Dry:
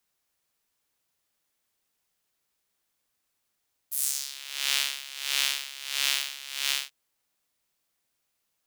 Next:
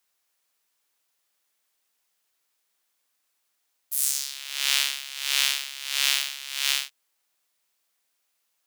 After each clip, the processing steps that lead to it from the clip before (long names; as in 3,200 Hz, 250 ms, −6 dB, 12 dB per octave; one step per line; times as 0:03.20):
high-pass filter 580 Hz 6 dB per octave
level +3.5 dB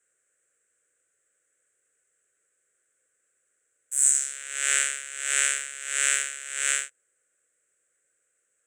drawn EQ curve 130 Hz 0 dB, 210 Hz −9 dB, 510 Hz +6 dB, 920 Hz −24 dB, 1,500 Hz +3 dB, 4,800 Hz −26 dB, 7,900 Hz +7 dB, 13,000 Hz −28 dB
level +6.5 dB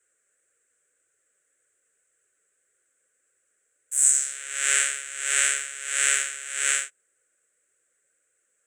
flanger 1.8 Hz, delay 1.9 ms, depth 3.5 ms, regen −34%
level +5.5 dB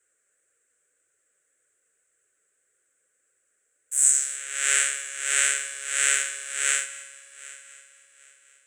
echo machine with several playback heads 258 ms, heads first and third, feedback 45%, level −19.5 dB